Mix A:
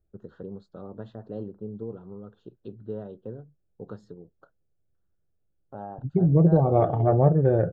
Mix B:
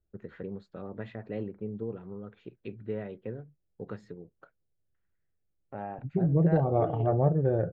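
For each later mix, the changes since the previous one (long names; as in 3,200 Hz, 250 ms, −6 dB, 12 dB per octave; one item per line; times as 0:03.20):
first voice: remove Butterworth band-reject 2,200 Hz, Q 1.1
second voice −5.5 dB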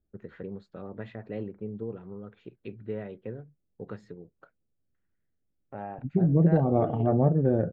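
second voice: add parametric band 240 Hz +13 dB 0.52 octaves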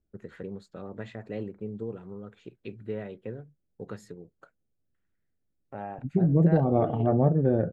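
master: remove high-frequency loss of the air 190 metres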